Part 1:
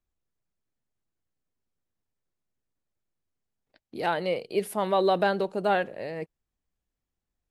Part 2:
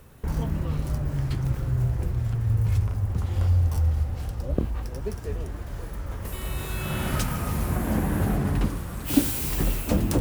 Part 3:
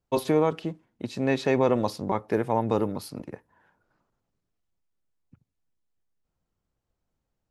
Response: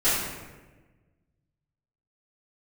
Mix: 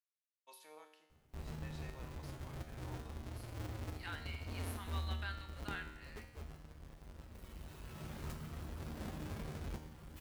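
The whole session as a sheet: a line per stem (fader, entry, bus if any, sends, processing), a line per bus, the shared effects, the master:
-1.5 dB, 0.00 s, no send, high-pass 1.3 kHz 24 dB/octave
-13.0 dB, 1.10 s, no send, square wave that keeps the level; reverb removal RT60 0.51 s
-15.5 dB, 0.35 s, no send, high-pass 1.1 kHz 12 dB/octave; treble shelf 5.5 kHz +10 dB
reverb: none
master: feedback comb 77 Hz, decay 1 s, harmonics all, mix 80%

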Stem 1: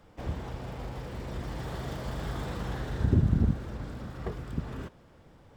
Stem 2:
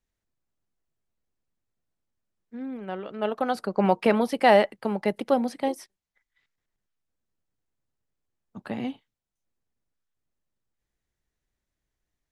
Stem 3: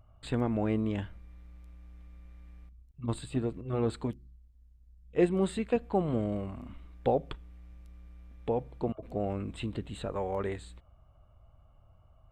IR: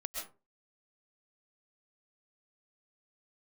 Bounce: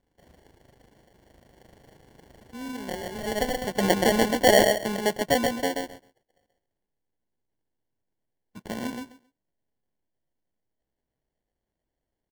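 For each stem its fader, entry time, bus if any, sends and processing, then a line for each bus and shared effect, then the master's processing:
-12.5 dB, 0.00 s, no send, no echo send, hum 50 Hz, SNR 21 dB; AM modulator 26 Hz, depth 50%; tilt shelf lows -6.5 dB, about 670 Hz
0.0 dB, 0.00 s, no send, echo send -4 dB, none
mute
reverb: none
echo: feedback delay 130 ms, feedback 16%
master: bass shelf 230 Hz -5 dB; sample-and-hold 35×

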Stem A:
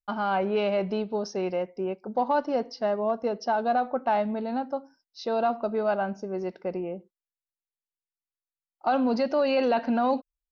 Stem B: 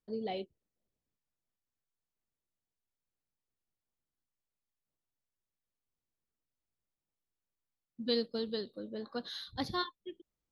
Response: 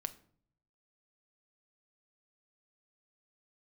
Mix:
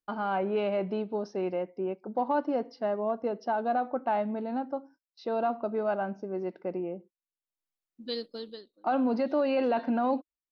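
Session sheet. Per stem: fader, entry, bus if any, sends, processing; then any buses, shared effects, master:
-3.5 dB, 0.00 s, no send, high-pass 82 Hz; gate -51 dBFS, range -21 dB; Bessel low-pass 2.8 kHz, order 2
-2.0 dB, 0.00 s, no send, peaking EQ 91 Hz -13.5 dB 1.9 oct; auto duck -21 dB, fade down 0.35 s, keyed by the first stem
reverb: none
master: peaking EQ 310 Hz +6.5 dB 0.33 oct

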